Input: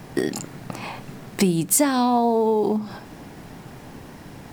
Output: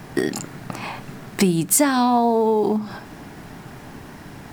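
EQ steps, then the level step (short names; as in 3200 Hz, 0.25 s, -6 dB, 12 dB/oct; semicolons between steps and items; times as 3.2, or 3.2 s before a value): bell 1500 Hz +3.5 dB 0.91 oct; notch 510 Hz, Q 12; +1.5 dB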